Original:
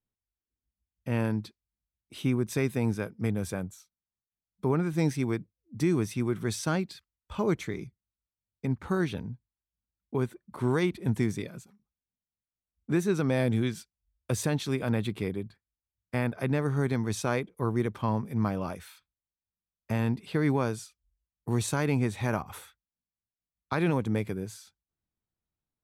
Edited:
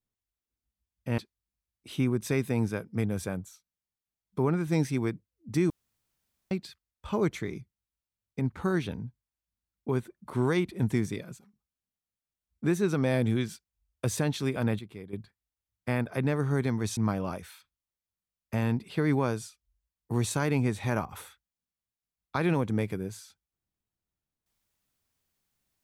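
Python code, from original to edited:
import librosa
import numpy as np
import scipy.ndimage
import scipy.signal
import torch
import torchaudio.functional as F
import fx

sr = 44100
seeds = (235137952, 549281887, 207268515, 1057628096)

y = fx.edit(x, sr, fx.cut(start_s=1.18, length_s=0.26),
    fx.room_tone_fill(start_s=5.96, length_s=0.81),
    fx.clip_gain(start_s=15.05, length_s=0.34, db=-11.5),
    fx.cut(start_s=17.23, length_s=1.11), tone=tone)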